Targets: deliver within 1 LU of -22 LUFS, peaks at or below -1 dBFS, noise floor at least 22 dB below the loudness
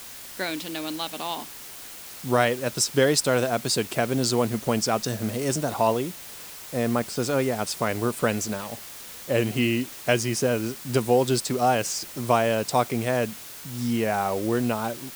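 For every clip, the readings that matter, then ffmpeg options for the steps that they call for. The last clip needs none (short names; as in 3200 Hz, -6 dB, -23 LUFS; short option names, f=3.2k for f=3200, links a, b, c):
noise floor -41 dBFS; noise floor target -47 dBFS; loudness -25.0 LUFS; peak -6.0 dBFS; loudness target -22.0 LUFS
-> -af "afftdn=nr=6:nf=-41"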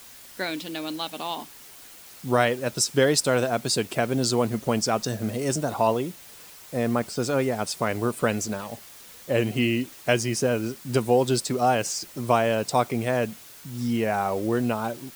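noise floor -47 dBFS; noise floor target -48 dBFS
-> -af "afftdn=nr=6:nf=-47"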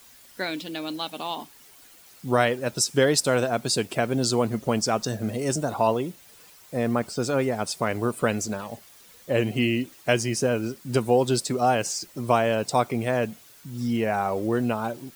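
noise floor -52 dBFS; loudness -25.5 LUFS; peak -6.0 dBFS; loudness target -22.0 LUFS
-> -af "volume=3.5dB"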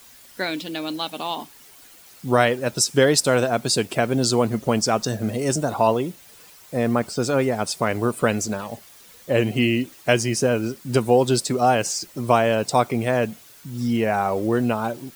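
loudness -22.0 LUFS; peak -2.5 dBFS; noise floor -48 dBFS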